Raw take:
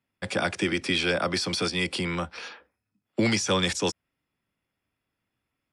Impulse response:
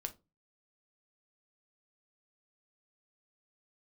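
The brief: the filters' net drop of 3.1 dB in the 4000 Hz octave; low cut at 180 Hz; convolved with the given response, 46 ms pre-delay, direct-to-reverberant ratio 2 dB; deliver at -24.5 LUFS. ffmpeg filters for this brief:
-filter_complex "[0:a]highpass=180,equalizer=f=4k:t=o:g=-4,asplit=2[a][b];[1:a]atrim=start_sample=2205,adelay=46[c];[b][c]afir=irnorm=-1:irlink=0,volume=0dB[d];[a][d]amix=inputs=2:normalize=0,volume=1.5dB"

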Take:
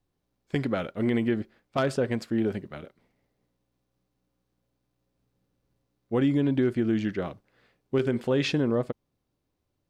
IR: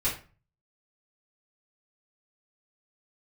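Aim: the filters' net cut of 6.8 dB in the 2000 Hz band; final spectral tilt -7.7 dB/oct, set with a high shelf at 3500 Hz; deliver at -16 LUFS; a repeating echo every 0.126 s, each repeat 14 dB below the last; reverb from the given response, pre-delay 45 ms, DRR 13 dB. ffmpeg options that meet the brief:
-filter_complex "[0:a]equalizer=f=2k:t=o:g=-7,highshelf=f=3.5k:g=-7.5,aecho=1:1:126|252:0.2|0.0399,asplit=2[a][b];[1:a]atrim=start_sample=2205,adelay=45[c];[b][c]afir=irnorm=-1:irlink=0,volume=-21.5dB[d];[a][d]amix=inputs=2:normalize=0,volume=11.5dB"

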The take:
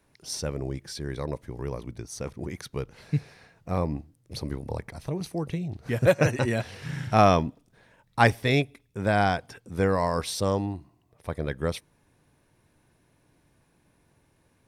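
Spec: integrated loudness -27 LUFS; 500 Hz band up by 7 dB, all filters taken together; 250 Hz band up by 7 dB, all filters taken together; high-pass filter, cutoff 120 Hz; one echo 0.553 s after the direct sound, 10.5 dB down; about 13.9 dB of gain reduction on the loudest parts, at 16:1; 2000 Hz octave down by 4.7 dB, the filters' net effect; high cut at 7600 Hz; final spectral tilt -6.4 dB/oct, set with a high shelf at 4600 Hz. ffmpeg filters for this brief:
-af "highpass=120,lowpass=7.6k,equalizer=f=250:t=o:g=8,equalizer=f=500:t=o:g=7,equalizer=f=2k:t=o:g=-6,highshelf=f=4.6k:g=-6,acompressor=threshold=-21dB:ratio=16,aecho=1:1:553:0.299,volume=3dB"

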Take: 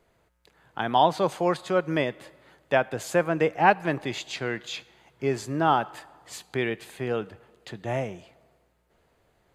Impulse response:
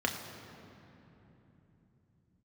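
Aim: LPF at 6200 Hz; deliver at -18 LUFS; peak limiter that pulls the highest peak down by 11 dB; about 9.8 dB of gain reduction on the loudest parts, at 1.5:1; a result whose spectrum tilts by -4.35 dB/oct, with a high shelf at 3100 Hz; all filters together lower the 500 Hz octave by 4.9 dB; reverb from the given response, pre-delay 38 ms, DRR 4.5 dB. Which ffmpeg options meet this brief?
-filter_complex "[0:a]lowpass=6.2k,equalizer=f=500:t=o:g=-6.5,highshelf=f=3.1k:g=6,acompressor=threshold=-43dB:ratio=1.5,alimiter=level_in=2.5dB:limit=-24dB:level=0:latency=1,volume=-2.5dB,asplit=2[a][b];[1:a]atrim=start_sample=2205,adelay=38[c];[b][c]afir=irnorm=-1:irlink=0,volume=-12.5dB[d];[a][d]amix=inputs=2:normalize=0,volume=20.5dB"

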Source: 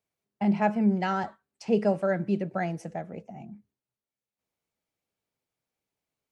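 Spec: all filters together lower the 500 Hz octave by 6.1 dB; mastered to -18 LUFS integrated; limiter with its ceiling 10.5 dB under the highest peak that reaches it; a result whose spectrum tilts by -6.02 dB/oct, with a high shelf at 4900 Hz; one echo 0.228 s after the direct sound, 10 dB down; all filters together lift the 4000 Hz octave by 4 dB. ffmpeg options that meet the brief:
-af "equalizer=f=500:t=o:g=-8,equalizer=f=4k:t=o:g=3.5,highshelf=f=4.9k:g=5.5,alimiter=limit=-23.5dB:level=0:latency=1,aecho=1:1:228:0.316,volume=16dB"

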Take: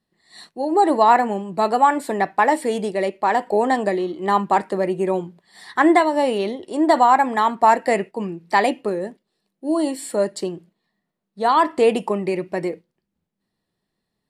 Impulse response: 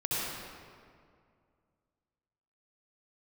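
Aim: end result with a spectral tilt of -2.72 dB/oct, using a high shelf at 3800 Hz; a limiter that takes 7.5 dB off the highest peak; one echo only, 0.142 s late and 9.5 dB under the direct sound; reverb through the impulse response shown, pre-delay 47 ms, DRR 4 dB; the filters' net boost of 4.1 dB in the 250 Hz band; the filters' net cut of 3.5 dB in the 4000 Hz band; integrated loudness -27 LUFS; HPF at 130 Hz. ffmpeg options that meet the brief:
-filter_complex "[0:a]highpass=130,equalizer=f=250:t=o:g=6,highshelf=f=3.8k:g=4,equalizer=f=4k:t=o:g=-7,alimiter=limit=-10dB:level=0:latency=1,aecho=1:1:142:0.335,asplit=2[a][b];[1:a]atrim=start_sample=2205,adelay=47[c];[b][c]afir=irnorm=-1:irlink=0,volume=-12dB[d];[a][d]amix=inputs=2:normalize=0,volume=-8dB"

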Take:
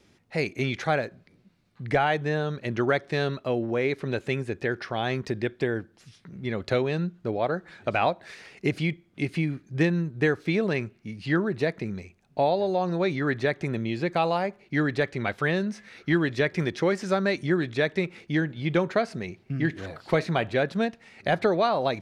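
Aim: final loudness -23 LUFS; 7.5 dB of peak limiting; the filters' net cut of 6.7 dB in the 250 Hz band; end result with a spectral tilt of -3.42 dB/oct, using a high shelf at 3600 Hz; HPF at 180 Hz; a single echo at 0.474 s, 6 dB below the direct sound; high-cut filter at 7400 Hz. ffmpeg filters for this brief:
-af "highpass=180,lowpass=7.4k,equalizer=f=250:t=o:g=-8.5,highshelf=f=3.6k:g=3.5,alimiter=limit=-18dB:level=0:latency=1,aecho=1:1:474:0.501,volume=8dB"

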